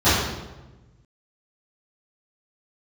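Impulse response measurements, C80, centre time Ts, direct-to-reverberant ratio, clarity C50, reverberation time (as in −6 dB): 2.5 dB, 81 ms, −18.0 dB, −1.0 dB, 1.1 s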